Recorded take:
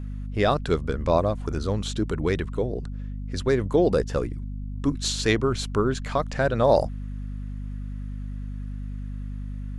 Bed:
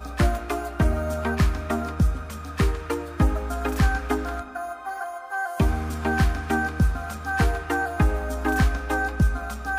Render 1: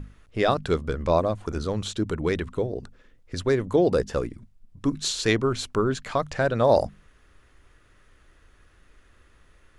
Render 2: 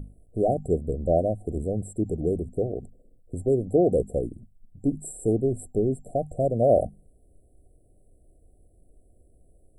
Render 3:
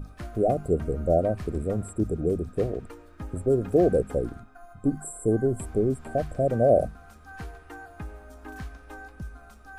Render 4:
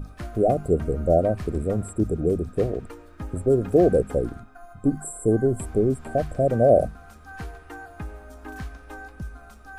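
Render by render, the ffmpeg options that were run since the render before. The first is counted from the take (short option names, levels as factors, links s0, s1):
-af "bandreject=f=50:t=h:w=6,bandreject=f=100:t=h:w=6,bandreject=f=150:t=h:w=6,bandreject=f=200:t=h:w=6,bandreject=f=250:t=h:w=6"
-af "afftfilt=real='re*(1-between(b*sr/4096,770,7500))':imag='im*(1-between(b*sr/4096,770,7500))':win_size=4096:overlap=0.75"
-filter_complex "[1:a]volume=0.126[s0];[0:a][s0]amix=inputs=2:normalize=0"
-af "volume=1.41"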